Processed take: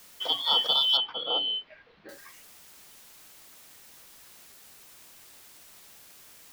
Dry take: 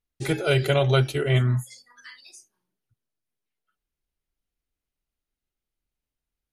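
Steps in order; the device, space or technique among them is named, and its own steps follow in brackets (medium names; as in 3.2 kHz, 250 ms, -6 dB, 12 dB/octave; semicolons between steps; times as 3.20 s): split-band scrambled radio (four frequency bands reordered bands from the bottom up 2413; band-pass 320–3100 Hz; white noise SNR 21 dB); 0.97–2.09 s: Bessel low-pass 2.3 kHz, order 8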